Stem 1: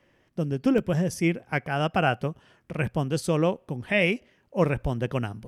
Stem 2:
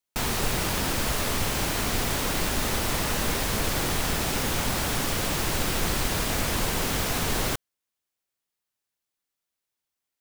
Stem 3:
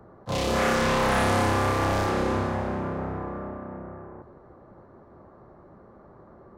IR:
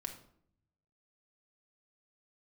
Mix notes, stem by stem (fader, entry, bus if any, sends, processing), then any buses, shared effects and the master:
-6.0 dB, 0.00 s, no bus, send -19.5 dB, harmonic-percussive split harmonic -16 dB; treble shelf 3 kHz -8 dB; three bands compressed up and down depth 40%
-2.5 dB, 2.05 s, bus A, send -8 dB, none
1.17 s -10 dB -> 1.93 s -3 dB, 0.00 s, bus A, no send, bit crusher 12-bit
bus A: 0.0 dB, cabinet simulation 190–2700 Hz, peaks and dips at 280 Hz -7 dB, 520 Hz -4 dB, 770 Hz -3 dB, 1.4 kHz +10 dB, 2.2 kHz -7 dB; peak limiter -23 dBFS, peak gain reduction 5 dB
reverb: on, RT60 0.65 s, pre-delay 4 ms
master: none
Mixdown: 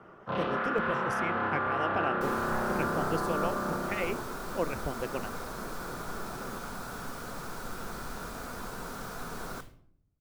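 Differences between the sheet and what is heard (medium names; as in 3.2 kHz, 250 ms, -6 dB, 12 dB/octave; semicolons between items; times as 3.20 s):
stem 2 -2.5 dB -> -14.0 dB; stem 3 -10.0 dB -> 0.0 dB; reverb return +6.5 dB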